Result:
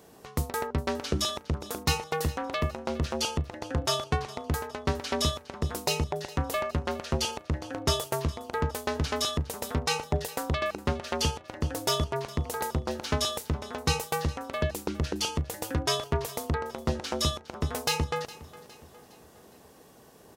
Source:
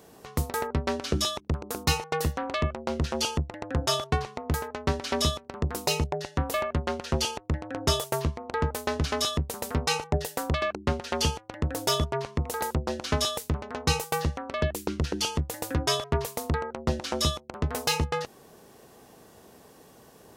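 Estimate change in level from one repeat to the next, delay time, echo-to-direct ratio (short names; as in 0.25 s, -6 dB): -7.0 dB, 0.411 s, -17.5 dB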